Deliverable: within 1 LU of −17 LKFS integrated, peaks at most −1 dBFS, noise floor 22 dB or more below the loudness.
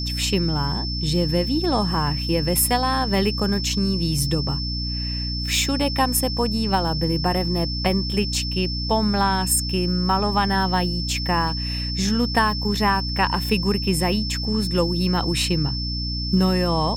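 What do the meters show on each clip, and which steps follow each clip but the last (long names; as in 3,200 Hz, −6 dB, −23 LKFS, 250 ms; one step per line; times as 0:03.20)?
mains hum 60 Hz; hum harmonics up to 300 Hz; level of the hum −25 dBFS; interfering tone 5,300 Hz; level of the tone −28 dBFS; integrated loudness −21.5 LKFS; sample peak −5.0 dBFS; target loudness −17.0 LKFS
→ mains-hum notches 60/120/180/240/300 Hz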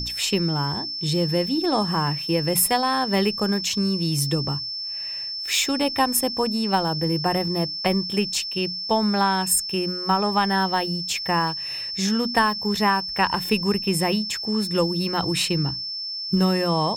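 mains hum none found; interfering tone 5,300 Hz; level of the tone −28 dBFS
→ notch filter 5,300 Hz, Q 30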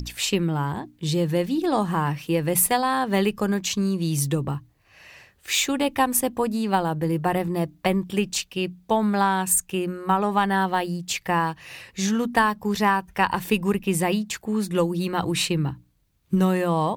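interfering tone none found; integrated loudness −23.5 LKFS; sample peak −6.0 dBFS; target loudness −17.0 LKFS
→ level +6.5 dB
brickwall limiter −1 dBFS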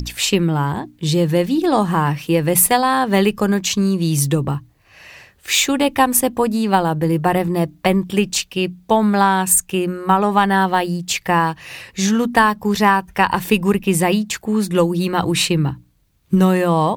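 integrated loudness −17.0 LKFS; sample peak −1.0 dBFS; background noise floor −55 dBFS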